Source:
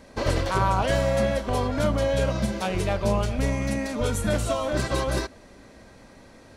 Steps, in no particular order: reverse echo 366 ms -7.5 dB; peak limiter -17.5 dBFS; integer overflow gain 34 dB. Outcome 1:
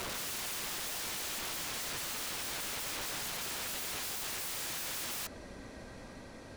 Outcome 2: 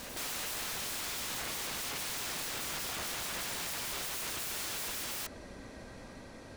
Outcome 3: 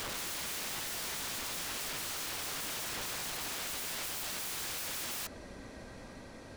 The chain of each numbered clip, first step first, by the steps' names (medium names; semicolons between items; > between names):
peak limiter > reverse echo > integer overflow; peak limiter > integer overflow > reverse echo; reverse echo > peak limiter > integer overflow